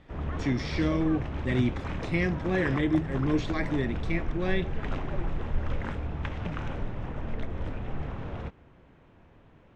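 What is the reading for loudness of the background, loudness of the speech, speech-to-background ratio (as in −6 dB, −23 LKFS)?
−35.5 LKFS, −29.5 LKFS, 6.0 dB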